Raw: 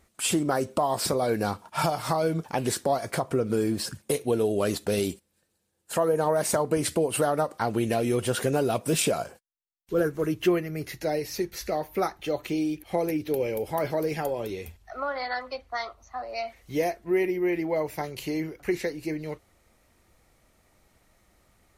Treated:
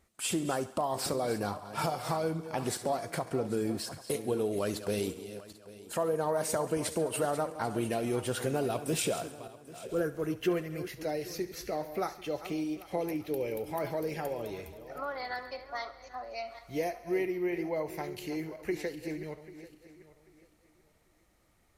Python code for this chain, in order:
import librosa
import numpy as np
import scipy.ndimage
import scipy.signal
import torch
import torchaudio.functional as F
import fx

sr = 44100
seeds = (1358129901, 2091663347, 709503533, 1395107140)

y = fx.reverse_delay_fb(x, sr, ms=395, feedback_pct=48, wet_db=-12.5)
y = fx.echo_thinned(y, sr, ms=69, feedback_pct=66, hz=420.0, wet_db=-16.5)
y = y * 10.0 ** (-6.5 / 20.0)